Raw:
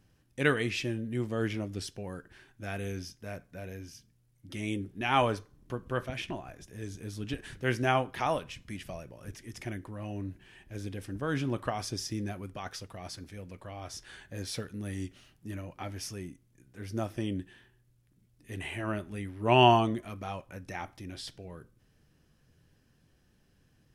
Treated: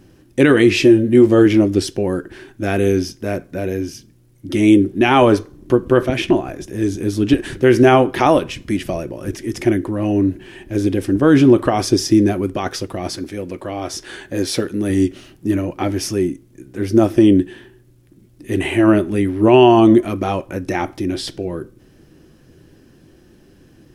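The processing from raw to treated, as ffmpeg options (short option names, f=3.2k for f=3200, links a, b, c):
-filter_complex "[0:a]asettb=1/sr,asplit=3[a][b][c];[a]atrim=end=0.694[d];[b]atrim=start=0.69:end=1.46,asetpts=PTS-STARTPTS,afade=t=in:d=0.004:c=qsin,afade=t=out:st=0.766:d=0.004:c=qsin,asplit=2[e][f];[f]adelay=20,volume=-8dB[g];[e][g]amix=inputs=2:normalize=0,atrim=end_sample=33957[h];[c]atrim=start=1.456[i];[d][h]acrossfade=d=0.004:c1=hsin:c2=qsin[j];[j][i]acrossfade=d=0.004:c1=qsin:c2=hsin,asettb=1/sr,asplit=3[k][l][m];[k]atrim=end=13.174[n];[l]atrim=start=13.17:end=14.9,asetpts=PTS-STARTPTS,afade=t=in:d=0.004:c=qsin,afade=t=out:st=1.726:d=0.004:c=qsin,lowshelf=f=190:g=-6.5[o];[m]atrim=start=14.896[p];[n][o]acrossfade=d=0.004:c1=hsin:c2=qsin[q];[q][p]acrossfade=d=0.004:c1=qsin:c2=hsin,equalizer=f=350:w=1.4:g=13.5,bandreject=f=440:w=12,alimiter=level_in=15.5dB:limit=-1dB:release=50:level=0:latency=1,volume=-1dB"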